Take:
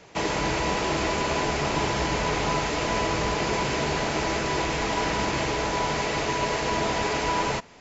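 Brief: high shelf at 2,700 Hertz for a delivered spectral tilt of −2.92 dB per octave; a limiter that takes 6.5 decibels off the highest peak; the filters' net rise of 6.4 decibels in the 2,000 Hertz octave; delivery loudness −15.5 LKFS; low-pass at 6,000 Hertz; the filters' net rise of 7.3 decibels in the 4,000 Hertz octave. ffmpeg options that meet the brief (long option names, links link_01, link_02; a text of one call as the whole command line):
ffmpeg -i in.wav -af "lowpass=6000,equalizer=frequency=2000:width_type=o:gain=4.5,highshelf=frequency=2700:gain=4,equalizer=frequency=4000:width_type=o:gain=5.5,volume=9dB,alimiter=limit=-7.5dB:level=0:latency=1" out.wav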